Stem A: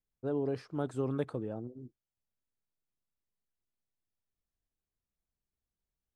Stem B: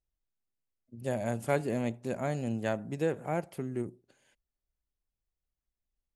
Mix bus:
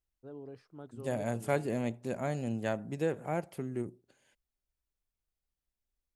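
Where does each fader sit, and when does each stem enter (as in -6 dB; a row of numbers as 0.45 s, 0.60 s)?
-13.5 dB, -1.5 dB; 0.00 s, 0.00 s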